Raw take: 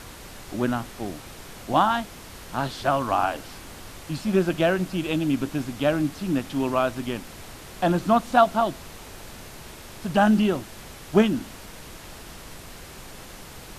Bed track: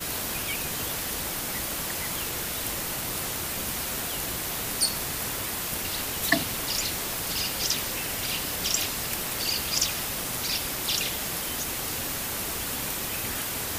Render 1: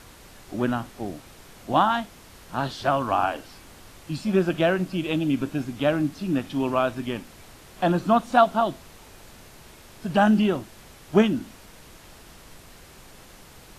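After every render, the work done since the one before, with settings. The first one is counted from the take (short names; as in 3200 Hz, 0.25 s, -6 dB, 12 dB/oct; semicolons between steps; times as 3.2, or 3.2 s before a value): noise print and reduce 6 dB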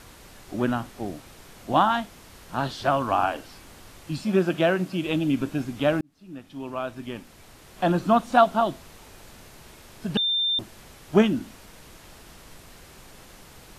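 4.24–5.05 HPF 120 Hz; 6.01–7.99 fade in; 10.17–10.59 bleep 3590 Hz -21 dBFS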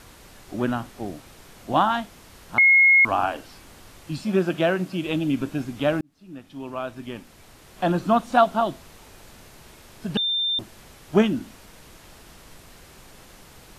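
2.58–3.05 bleep 2160 Hz -11.5 dBFS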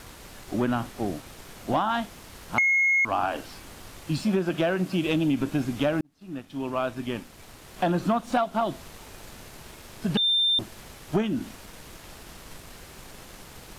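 compressor 16:1, threshold -23 dBFS, peak gain reduction 12.5 dB; sample leveller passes 1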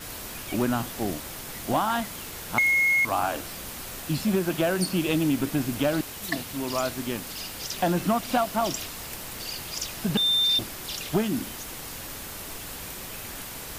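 add bed track -7.5 dB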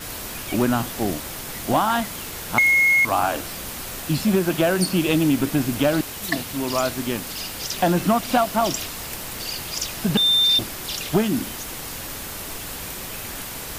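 gain +5 dB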